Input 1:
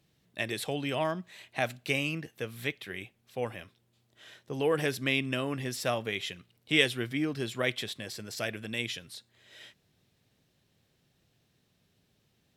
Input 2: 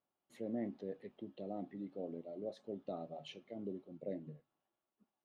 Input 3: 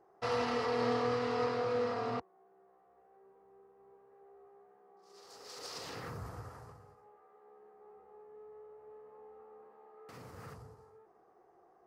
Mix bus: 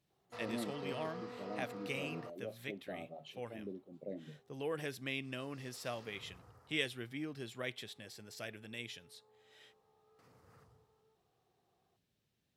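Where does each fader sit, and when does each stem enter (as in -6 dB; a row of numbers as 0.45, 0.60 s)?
-11.5, -2.0, -14.5 dB; 0.00, 0.00, 0.10 s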